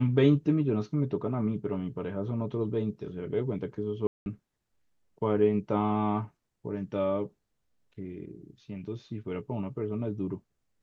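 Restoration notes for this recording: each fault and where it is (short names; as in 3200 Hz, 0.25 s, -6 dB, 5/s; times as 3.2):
4.07–4.26 gap 0.191 s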